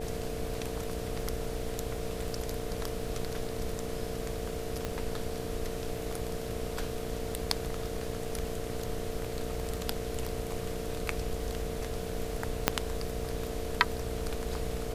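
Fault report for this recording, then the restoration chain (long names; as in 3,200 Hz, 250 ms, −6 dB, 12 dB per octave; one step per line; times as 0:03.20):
mains buzz 60 Hz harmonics 12 −40 dBFS
surface crackle 28 per second −43 dBFS
whistle 450 Hz −39 dBFS
0:04.85: click −18 dBFS
0:12.68: click −4 dBFS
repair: click removal
notch filter 450 Hz, Q 30
hum removal 60 Hz, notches 12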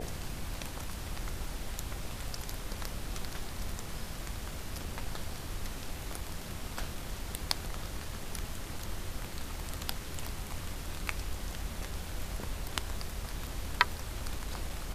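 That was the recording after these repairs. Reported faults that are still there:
none of them is left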